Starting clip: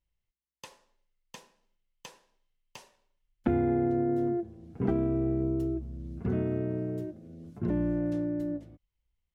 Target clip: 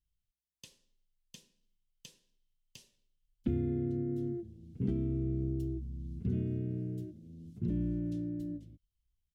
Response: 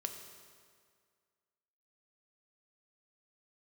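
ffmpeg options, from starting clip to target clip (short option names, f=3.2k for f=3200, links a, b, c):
-af "firequalizer=gain_entry='entry(150,0);entry(820,-26);entry(3100,-2)':delay=0.05:min_phase=1,volume=-1dB"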